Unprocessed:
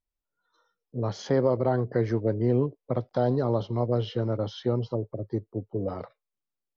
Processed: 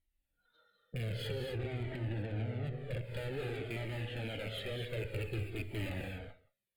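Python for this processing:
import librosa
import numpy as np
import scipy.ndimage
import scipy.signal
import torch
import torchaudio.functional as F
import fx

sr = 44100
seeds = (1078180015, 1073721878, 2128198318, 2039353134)

y = fx.rattle_buzz(x, sr, strikes_db=-33.0, level_db=-21.0)
y = fx.env_lowpass_down(y, sr, base_hz=930.0, full_db=-21.5)
y = fx.highpass(y, sr, hz=510.0, slope=6, at=(3.01, 5.05))
y = fx.over_compress(y, sr, threshold_db=-27.0, ratio=-0.5)
y = fx.tube_stage(y, sr, drive_db=41.0, bias=0.5)
y = fx.fixed_phaser(y, sr, hz=2500.0, stages=4)
y = y + 10.0 ** (-22.0 / 20.0) * np.pad(y, (int(169 * sr / 1000.0), 0))[:len(y)]
y = fx.rev_gated(y, sr, seeds[0], gate_ms=280, shape='rising', drr_db=3.0)
y = fx.comb_cascade(y, sr, direction='falling', hz=0.52)
y = F.gain(torch.from_numpy(y), 9.5).numpy()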